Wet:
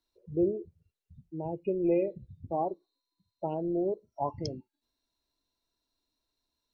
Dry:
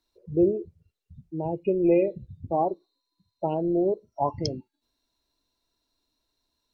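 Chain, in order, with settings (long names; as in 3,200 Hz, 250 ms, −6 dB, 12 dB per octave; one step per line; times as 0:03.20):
dynamic equaliser 3,600 Hz, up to −4 dB, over −51 dBFS, Q 0.95
level −6 dB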